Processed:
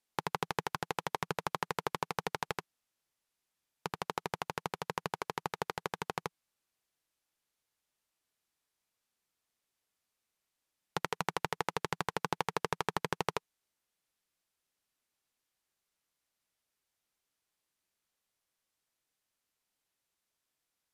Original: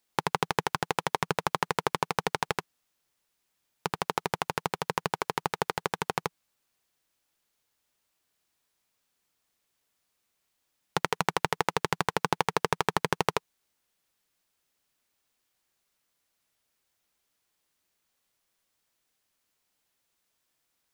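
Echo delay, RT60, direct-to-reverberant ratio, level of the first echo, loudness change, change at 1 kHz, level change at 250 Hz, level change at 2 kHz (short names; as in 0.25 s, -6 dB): none, none, none, none, -7.0 dB, -7.0 dB, -7.0 dB, -7.0 dB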